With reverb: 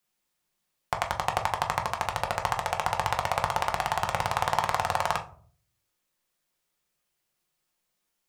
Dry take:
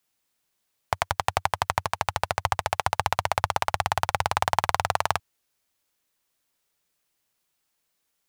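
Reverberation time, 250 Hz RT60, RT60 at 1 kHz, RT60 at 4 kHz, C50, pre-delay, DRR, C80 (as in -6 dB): 0.50 s, 0.65 s, 0.40 s, 0.25 s, 13.0 dB, 5 ms, 2.0 dB, 18.0 dB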